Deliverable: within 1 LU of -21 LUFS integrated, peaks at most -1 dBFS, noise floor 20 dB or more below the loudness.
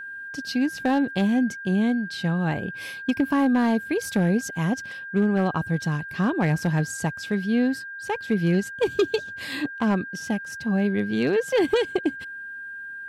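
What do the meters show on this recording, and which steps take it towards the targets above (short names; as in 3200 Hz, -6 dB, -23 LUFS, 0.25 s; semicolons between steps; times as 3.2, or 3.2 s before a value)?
clipped 0.3%; flat tops at -13.5 dBFS; steady tone 1600 Hz; tone level -34 dBFS; loudness -24.5 LUFS; peak -13.5 dBFS; loudness target -21.0 LUFS
-> clip repair -13.5 dBFS; notch 1600 Hz, Q 30; gain +3.5 dB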